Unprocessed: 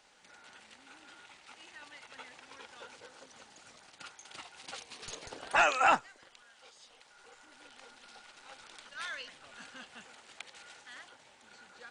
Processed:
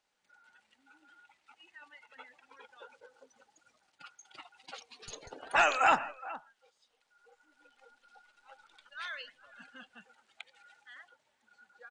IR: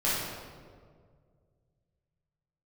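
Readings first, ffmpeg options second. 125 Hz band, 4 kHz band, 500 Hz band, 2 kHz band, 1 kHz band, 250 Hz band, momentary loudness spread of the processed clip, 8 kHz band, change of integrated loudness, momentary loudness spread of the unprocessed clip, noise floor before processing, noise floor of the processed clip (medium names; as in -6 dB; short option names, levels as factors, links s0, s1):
no reading, -1.5 dB, 0.0 dB, 0.0 dB, 0.0 dB, -0.5 dB, 24 LU, -3.0 dB, +0.5 dB, 24 LU, -61 dBFS, -77 dBFS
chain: -filter_complex "[0:a]asplit=2[s0][s1];[s1]adelay=419.8,volume=0.158,highshelf=f=4000:g=-9.45[s2];[s0][s2]amix=inputs=2:normalize=0,asplit=2[s3][s4];[1:a]atrim=start_sample=2205,atrim=end_sample=4410,adelay=61[s5];[s4][s5]afir=irnorm=-1:irlink=0,volume=0.0473[s6];[s3][s6]amix=inputs=2:normalize=0,afftdn=nr=17:nf=-47"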